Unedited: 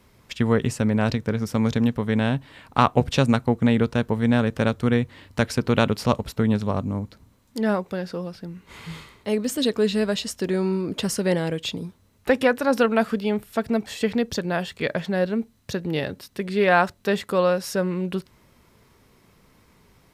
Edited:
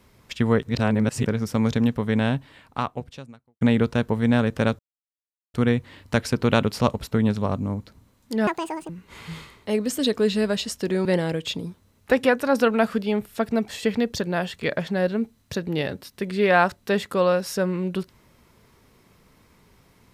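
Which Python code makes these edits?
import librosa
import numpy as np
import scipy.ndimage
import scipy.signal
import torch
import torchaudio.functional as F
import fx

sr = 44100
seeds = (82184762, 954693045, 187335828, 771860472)

y = fx.edit(x, sr, fx.reverse_span(start_s=0.63, length_s=0.63),
    fx.fade_out_span(start_s=2.3, length_s=1.31, curve='qua'),
    fx.insert_silence(at_s=4.79, length_s=0.75),
    fx.speed_span(start_s=7.72, length_s=0.76, speed=1.8),
    fx.cut(start_s=10.64, length_s=0.59), tone=tone)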